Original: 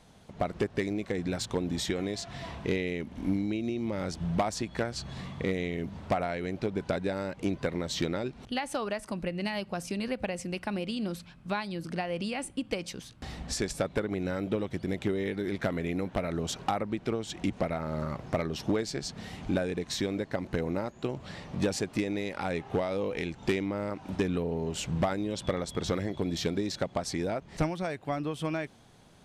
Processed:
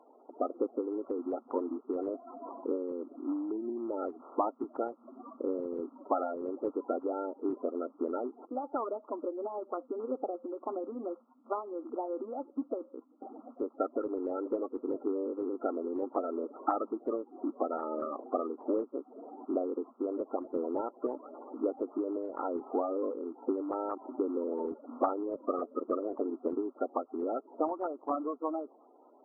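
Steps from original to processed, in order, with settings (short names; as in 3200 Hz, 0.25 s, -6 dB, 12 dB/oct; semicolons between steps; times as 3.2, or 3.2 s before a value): bin magnitudes rounded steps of 30 dB; brick-wall FIR band-pass 240–1400 Hz; AAC 32 kbps 44100 Hz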